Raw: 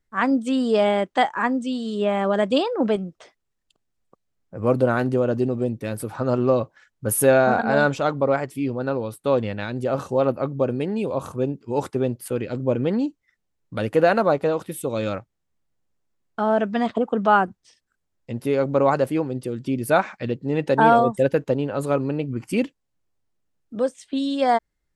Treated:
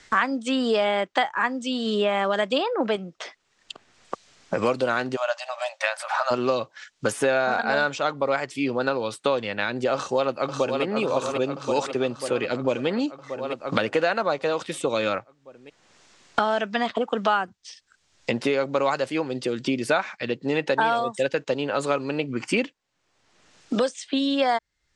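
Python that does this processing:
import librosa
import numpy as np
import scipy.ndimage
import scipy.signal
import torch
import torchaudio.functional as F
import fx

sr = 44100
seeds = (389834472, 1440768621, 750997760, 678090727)

y = fx.brickwall_highpass(x, sr, low_hz=550.0, at=(5.15, 6.3), fade=0.02)
y = fx.echo_throw(y, sr, start_s=9.94, length_s=0.89, ms=540, feedback_pct=65, wet_db=-7.0)
y = scipy.signal.sosfilt(scipy.signal.bessel(8, 4600.0, 'lowpass', norm='mag', fs=sr, output='sos'), y)
y = fx.tilt_eq(y, sr, slope=4.0)
y = fx.band_squash(y, sr, depth_pct=100)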